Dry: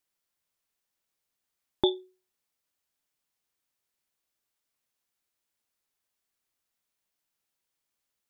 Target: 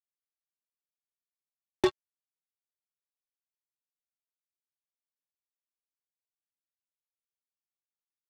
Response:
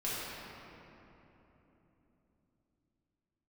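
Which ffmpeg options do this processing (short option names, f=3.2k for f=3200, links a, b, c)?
-filter_complex "[0:a]acrossover=split=120|320|1000[a][b][c][d];[d]acompressor=threshold=-41dB:ratio=6[e];[a][b][c][e]amix=inputs=4:normalize=0,acrusher=bits=3:mix=0:aa=0.5"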